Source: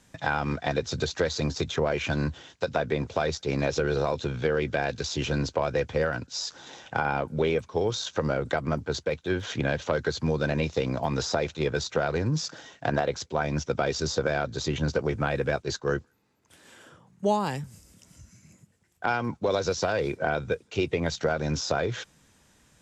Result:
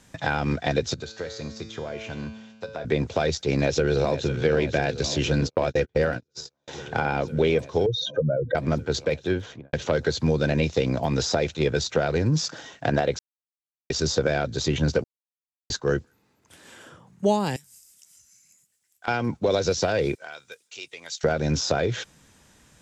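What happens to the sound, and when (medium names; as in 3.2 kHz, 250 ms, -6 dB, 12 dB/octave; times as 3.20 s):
0.94–2.85 s: feedback comb 110 Hz, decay 1.3 s, mix 80%
3.49–4.43 s: echo throw 500 ms, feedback 85%, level -12.5 dB
5.41–6.68 s: gate -31 dBFS, range -43 dB
7.86–8.55 s: spectral contrast enhancement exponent 2.7
9.20–9.73 s: studio fade out
13.19–13.90 s: mute
15.04–15.70 s: mute
17.56–19.08 s: pre-emphasis filter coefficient 0.97
20.15–21.24 s: differentiator
whole clip: dynamic bell 1.1 kHz, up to -7 dB, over -43 dBFS, Q 1.5; trim +4.5 dB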